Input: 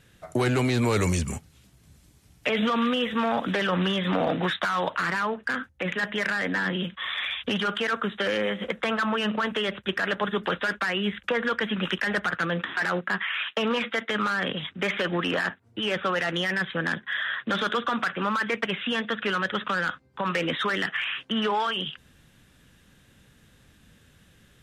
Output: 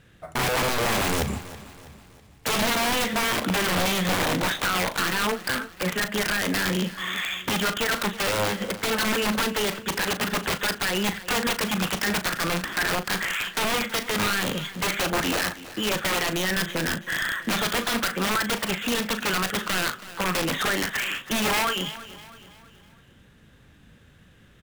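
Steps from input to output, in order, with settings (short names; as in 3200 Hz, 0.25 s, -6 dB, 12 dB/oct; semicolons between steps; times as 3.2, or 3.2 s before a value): high shelf 6300 Hz -7.5 dB; wrapped overs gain 21 dB; in parallel at -8 dB: sample-rate reducer 10000 Hz; on the sum: doubler 38 ms -11 dB; feedback echo 0.325 s, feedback 46%, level -16.5 dB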